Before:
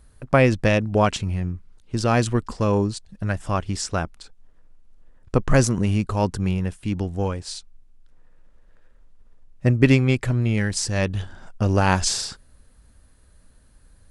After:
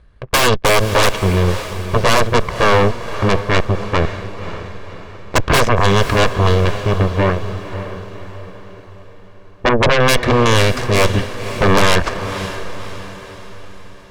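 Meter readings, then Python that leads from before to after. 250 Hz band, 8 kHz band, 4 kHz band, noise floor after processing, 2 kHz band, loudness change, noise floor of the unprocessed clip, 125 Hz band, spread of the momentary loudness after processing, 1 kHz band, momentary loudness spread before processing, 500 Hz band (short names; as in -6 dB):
+2.5 dB, +4.5 dB, +11.5 dB, -39 dBFS, +10.5 dB, +6.5 dB, -54 dBFS, +4.0 dB, 18 LU, +10.5 dB, 13 LU, +8.5 dB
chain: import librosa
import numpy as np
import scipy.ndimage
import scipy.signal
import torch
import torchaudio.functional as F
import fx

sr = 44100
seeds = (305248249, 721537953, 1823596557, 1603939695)

p1 = fx.lower_of_two(x, sr, delay_ms=1.8)
p2 = fx.filter_lfo_lowpass(p1, sr, shape='saw_down', hz=0.2, low_hz=600.0, high_hz=3000.0, q=1.0)
p3 = np.sign(p2) * np.maximum(np.abs(p2) - 10.0 ** (-31.0 / 20.0), 0.0)
p4 = p2 + (p3 * librosa.db_to_amplitude(-6.0))
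p5 = fx.cheby_harmonics(p4, sr, harmonics=(8,), levels_db=(-6,), full_scale_db=-0.5)
p6 = fx.fold_sine(p5, sr, drive_db=9, ceiling_db=-0.5)
p7 = p6 + fx.echo_diffused(p6, sr, ms=549, feedback_pct=48, wet_db=-11, dry=0)
y = p7 * librosa.db_to_amplitude(-8.0)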